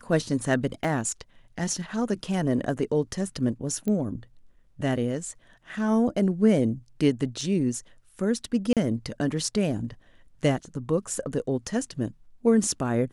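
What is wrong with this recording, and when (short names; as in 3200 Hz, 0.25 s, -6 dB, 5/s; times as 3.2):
0.84 gap 2.7 ms
3.88 pop -18 dBFS
7.41 gap 3.4 ms
8.73–8.77 gap 37 ms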